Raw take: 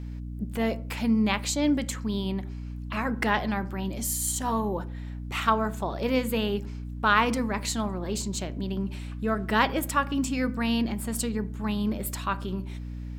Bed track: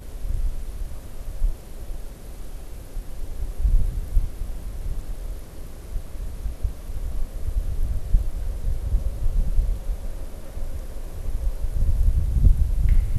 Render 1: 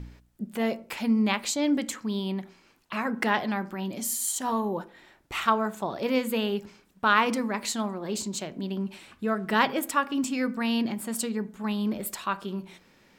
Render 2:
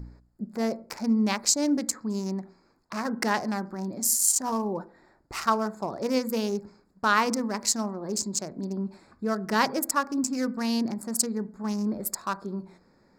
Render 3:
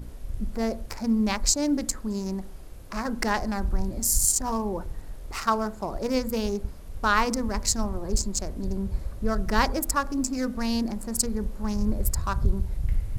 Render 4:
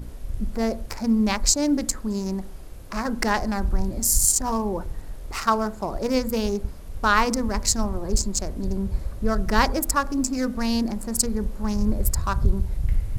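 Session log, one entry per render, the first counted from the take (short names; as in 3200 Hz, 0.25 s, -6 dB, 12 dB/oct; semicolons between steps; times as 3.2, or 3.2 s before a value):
de-hum 60 Hz, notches 5
Wiener smoothing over 15 samples; resonant high shelf 4100 Hz +7 dB, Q 3
add bed track -7 dB
gain +3 dB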